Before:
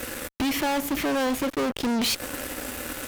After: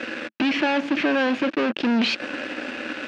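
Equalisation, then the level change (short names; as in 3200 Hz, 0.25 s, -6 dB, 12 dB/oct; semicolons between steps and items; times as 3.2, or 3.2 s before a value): speaker cabinet 200–4700 Hz, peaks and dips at 220 Hz +7 dB, 320 Hz +7 dB, 600 Hz +4 dB, 1600 Hz +8 dB, 2600 Hz +9 dB; 0.0 dB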